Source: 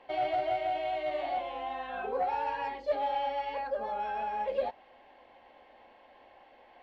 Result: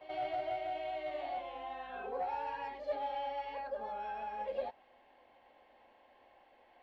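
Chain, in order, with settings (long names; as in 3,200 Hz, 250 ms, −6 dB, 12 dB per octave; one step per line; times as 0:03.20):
backwards echo 83 ms −12 dB
level −7 dB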